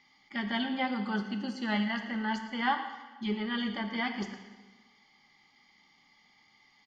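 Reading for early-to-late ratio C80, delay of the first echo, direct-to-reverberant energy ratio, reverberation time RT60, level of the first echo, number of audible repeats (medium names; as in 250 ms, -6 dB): 9.0 dB, 114 ms, 6.5 dB, 1.3 s, -14.5 dB, 1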